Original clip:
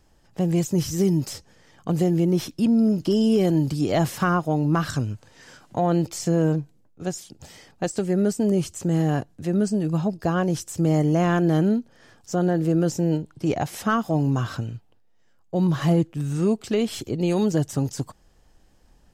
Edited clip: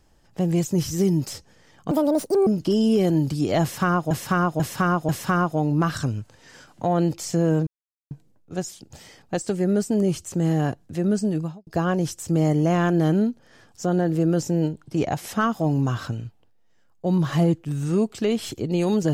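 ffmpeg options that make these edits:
ffmpeg -i in.wav -filter_complex "[0:a]asplit=8[link_01][link_02][link_03][link_04][link_05][link_06][link_07][link_08];[link_01]atrim=end=1.914[link_09];[link_02]atrim=start=1.91:end=2.87,asetpts=PTS-STARTPTS,asetrate=75852,aresample=44100[link_10];[link_03]atrim=start=2.866:end=4.512[link_11];[link_04]atrim=start=4.018:end=4.512[link_12];[link_05]atrim=start=4.018:end=4.512[link_13];[link_06]atrim=start=4.018:end=6.6,asetpts=PTS-STARTPTS,afade=type=out:start_time=2.578:duration=0.004:curve=hsin,apad=pad_dur=0.44[link_14];[link_07]atrim=start=6.6:end=10.16,asetpts=PTS-STARTPTS,afade=type=in:duration=0.004:curve=hsin,afade=type=out:start_time=3.27:duration=0.29:curve=qua[link_15];[link_08]atrim=start=10.16,asetpts=PTS-STARTPTS,afade=type=in:duration=0.004:curve=hsin[link_16];[link_09][link_10]acrossfade=duration=0.004:curve1=hsin:curve2=hsin[link_17];[link_17][link_11]acrossfade=duration=0.004:curve1=hsin:curve2=hsin[link_18];[link_18][link_12]acrossfade=duration=0.004:curve1=hsin:curve2=hsin[link_19];[link_19][link_13]acrossfade=duration=0.004:curve1=hsin:curve2=hsin[link_20];[link_14][link_15][link_16]concat=n=3:v=0:a=1[link_21];[link_20][link_21]acrossfade=duration=0.004:curve1=hsin:curve2=hsin" out.wav

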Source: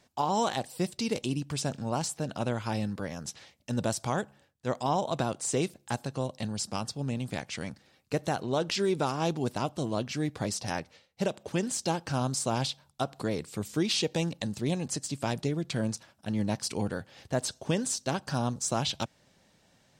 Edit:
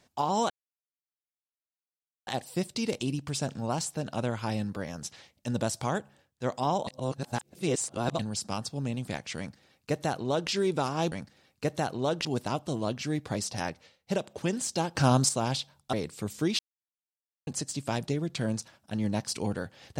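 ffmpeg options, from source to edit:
ffmpeg -i in.wav -filter_complex "[0:a]asplit=11[link_01][link_02][link_03][link_04][link_05][link_06][link_07][link_08][link_09][link_10][link_11];[link_01]atrim=end=0.5,asetpts=PTS-STARTPTS,afade=type=out:start_time=0.496:duration=0.004:curve=hsin,apad=pad_dur=1.77[link_12];[link_02]atrim=start=0.5:end=5.102,asetpts=PTS-STARTPTS,afade=type=in:duration=0.004:curve=hsin[link_13];[link_03]atrim=start=5.098:end=6.422,asetpts=PTS-STARTPTS,areverse[link_14];[link_04]atrim=start=6.418:end=9.352[link_15];[link_05]atrim=start=7.608:end=8.742[link_16];[link_06]atrim=start=9.348:end=12.052[link_17];[link_07]atrim=start=12.048:end=12.392,asetpts=PTS-STARTPTS,volume=7dB[link_18];[link_08]atrim=start=12.388:end=13.032[link_19];[link_09]atrim=start=13.278:end=13.94,asetpts=PTS-STARTPTS,afade=type=out:start_time=0.658:duration=0.004:curve=hsin[link_20];[link_10]atrim=start=13.94:end=14.82,asetpts=PTS-STARTPTS,volume=0[link_21];[link_11]atrim=start=14.82,asetpts=PTS-STARTPTS,afade=type=in:duration=0.004:curve=hsin[link_22];[link_12][link_13]concat=n=2:v=0:a=1[link_23];[link_23][link_14]acrossfade=duration=0.004:curve1=hsin:curve2=hsin[link_24];[link_24][link_15]acrossfade=duration=0.004:curve1=hsin:curve2=hsin[link_25];[link_25][link_16]acrossfade=duration=0.004:curve1=hsin:curve2=hsin[link_26];[link_26][link_17]acrossfade=duration=0.004:curve1=hsin:curve2=hsin[link_27];[link_27][link_18]acrossfade=duration=0.004:curve1=hsin:curve2=hsin[link_28];[link_28][link_19]acrossfade=duration=0.004:curve1=hsin:curve2=hsin[link_29];[link_20][link_21][link_22]concat=n=3:v=0:a=1[link_30];[link_29][link_30]acrossfade=duration=0.004:curve1=hsin:curve2=hsin" out.wav

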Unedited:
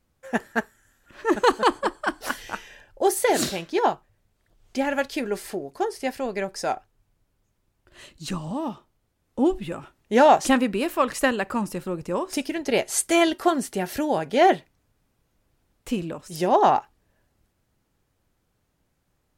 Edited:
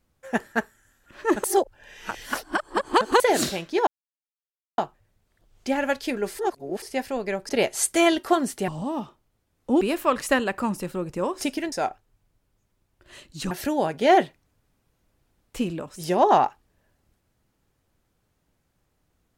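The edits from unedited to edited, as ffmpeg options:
ffmpeg -i in.wav -filter_complex "[0:a]asplit=11[link_01][link_02][link_03][link_04][link_05][link_06][link_07][link_08][link_09][link_10][link_11];[link_01]atrim=end=1.442[link_12];[link_02]atrim=start=1.438:end=3.202,asetpts=PTS-STARTPTS,areverse[link_13];[link_03]atrim=start=3.198:end=3.87,asetpts=PTS-STARTPTS,afade=type=out:start_time=0.668:duration=0.004:curve=hsin,apad=pad_dur=0.91[link_14];[link_04]atrim=start=3.87:end=5.482,asetpts=PTS-STARTPTS,afade=type=in:duration=0.004:curve=hsin[link_15];[link_05]atrim=start=5.478:end=5.912,asetpts=PTS-STARTPTS,areverse[link_16];[link_06]atrim=start=5.908:end=6.582[link_17];[link_07]atrim=start=12.638:end=13.832[link_18];[link_08]atrim=start=8.368:end=9.502[link_19];[link_09]atrim=start=10.728:end=12.642[link_20];[link_10]atrim=start=6.578:end=8.372[link_21];[link_11]atrim=start=13.828[link_22];[link_12][link_13]acrossfade=duration=0.004:curve1=hsin:curve2=hsin[link_23];[link_14][link_15]concat=n=2:v=0:a=1[link_24];[link_23][link_24]acrossfade=duration=0.004:curve1=hsin:curve2=hsin[link_25];[link_25][link_16]acrossfade=duration=0.004:curve1=hsin:curve2=hsin[link_26];[link_26][link_17]acrossfade=duration=0.004:curve1=hsin:curve2=hsin[link_27];[link_27][link_18]acrossfade=duration=0.004:curve1=hsin:curve2=hsin[link_28];[link_28][link_19]acrossfade=duration=0.004:curve1=hsin:curve2=hsin[link_29];[link_29][link_20]acrossfade=duration=0.004:curve1=hsin:curve2=hsin[link_30];[link_30][link_21]acrossfade=duration=0.004:curve1=hsin:curve2=hsin[link_31];[link_31][link_22]acrossfade=duration=0.004:curve1=hsin:curve2=hsin" out.wav

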